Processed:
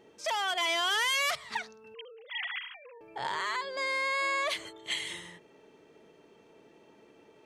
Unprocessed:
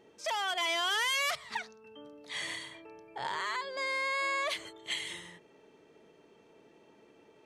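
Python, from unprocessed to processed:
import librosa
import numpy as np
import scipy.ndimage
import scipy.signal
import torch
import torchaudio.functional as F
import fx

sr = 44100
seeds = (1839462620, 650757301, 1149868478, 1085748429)

y = fx.sine_speech(x, sr, at=(1.94, 3.01))
y = F.gain(torch.from_numpy(y), 2.0).numpy()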